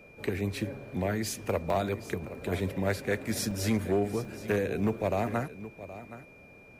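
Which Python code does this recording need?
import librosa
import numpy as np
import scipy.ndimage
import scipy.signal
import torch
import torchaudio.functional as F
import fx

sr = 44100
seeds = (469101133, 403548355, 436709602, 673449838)

y = fx.fix_declip(x, sr, threshold_db=-20.0)
y = fx.notch(y, sr, hz=2400.0, q=30.0)
y = fx.fix_interpolate(y, sr, at_s=(1.7, 2.04, 3.51, 4.25), length_ms=2.4)
y = fx.fix_echo_inverse(y, sr, delay_ms=771, level_db=-15.0)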